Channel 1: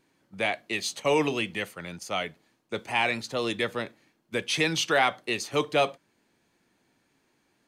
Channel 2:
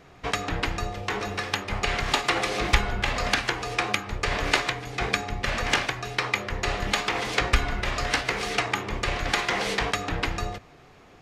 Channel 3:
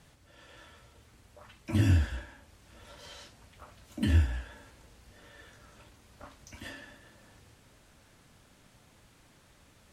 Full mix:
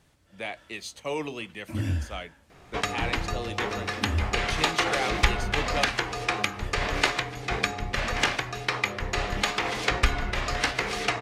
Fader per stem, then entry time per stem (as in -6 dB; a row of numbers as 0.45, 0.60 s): -7.5, -1.0, -4.0 dB; 0.00, 2.50, 0.00 s